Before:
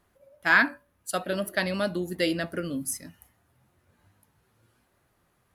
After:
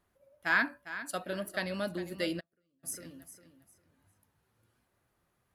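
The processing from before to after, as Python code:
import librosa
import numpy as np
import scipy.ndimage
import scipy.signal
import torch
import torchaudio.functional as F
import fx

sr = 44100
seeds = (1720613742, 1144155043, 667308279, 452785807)

y = fx.echo_feedback(x, sr, ms=403, feedback_pct=25, wet_db=-13)
y = fx.gate_flip(y, sr, shuts_db=-29.0, range_db=-40, at=(2.39, 2.83), fade=0.02)
y = y * 10.0 ** (-7.5 / 20.0)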